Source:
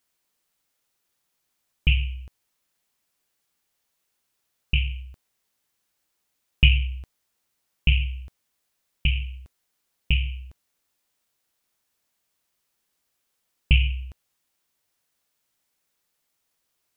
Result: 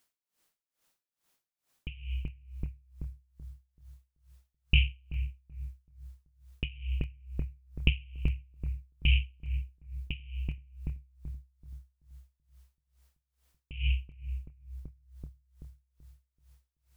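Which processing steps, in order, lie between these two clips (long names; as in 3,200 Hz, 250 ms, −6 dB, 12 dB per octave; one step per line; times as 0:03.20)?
downward compressor, threshold −19 dBFS, peak gain reduction 8.5 dB
on a send: bucket-brigade delay 382 ms, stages 4,096, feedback 57%, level −6 dB
on the sum: tremolo with a sine in dB 2.3 Hz, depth 26 dB
level +3 dB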